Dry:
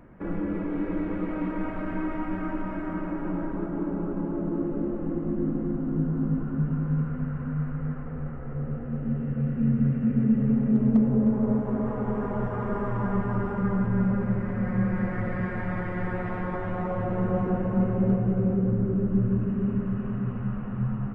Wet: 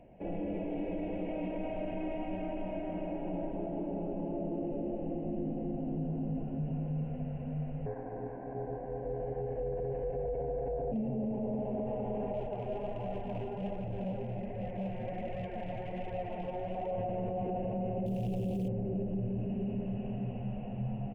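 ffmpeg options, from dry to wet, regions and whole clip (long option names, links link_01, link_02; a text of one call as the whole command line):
ffmpeg -i in.wav -filter_complex "[0:a]asettb=1/sr,asplit=3[link_01][link_02][link_03];[link_01]atrim=end=7.864[link_04];[link_02]atrim=start=7.86:end=10.92,asetpts=PTS-STARTPTS,afade=type=in:duration=0.004:curve=qsin,afade=type=out:start_time=3.056:duration=0.004:curve=qsin,lowpass=frequency=1300:width_type=q:width=5.8,aeval=exprs='val(0)*sin(2*PI*270*n/s)':channel_layout=same[link_05];[link_03]atrim=start=10.916[link_06];[link_04][link_05]acrossfade=duration=0.004:curve1=hsin:curve2=qsin[link_07];[link_07][link_06]acrossfade=duration=0.004:curve1=qsin:curve2=hsin,asettb=1/sr,asplit=3[link_08][link_09][link_10];[link_08]atrim=end=12.334[link_11];[link_09]atrim=start=12.33:end=16.91,asetpts=PTS-STARTPTS,afade=type=in:duration=0.004:curve=qsin,afade=type=out:start_time=4.576:duration=0.004:curve=qsin,flanger=delay=1.5:depth=6.4:regen=-1:speed=1.3:shape=sinusoidal,volume=27dB,asoftclip=hard,volume=-27dB[link_12];[link_10]atrim=start=16.906[link_13];[link_11][link_12]acrossfade=duration=0.004:curve1=hsin:curve2=qsin[link_14];[link_14][link_13]acrossfade=duration=0.004:curve1=qsin:curve2=hsin,asettb=1/sr,asplit=3[link_15][link_16][link_17];[link_15]atrim=end=18.064[link_18];[link_16]atrim=start=18.06:end=18.68,asetpts=PTS-STARTPTS,afade=type=in:duration=0.004:curve=qsin,afade=type=out:start_time=0.616:duration=0.004:curve=qsin,lowpass=frequency=2000:width=0.5412,lowpass=frequency=2000:width=1.3066,lowshelf=frequency=500:gain=10.5,acrusher=bits=7:dc=4:mix=0:aa=0.000001[link_19];[link_17]atrim=start=18.676[link_20];[link_18][link_19]acrossfade=duration=0.004:curve1=hsin:curve2=qsin[link_21];[link_21][link_20]acrossfade=duration=0.004:curve1=qsin:curve2=hsin,firequalizer=gain_entry='entry(320,0);entry(700,13);entry(1200,-20);entry(2700,12);entry(4000,-5)':delay=0.05:min_phase=1,alimiter=limit=-20.5dB:level=0:latency=1:release=14,volume=-7.5dB" out.wav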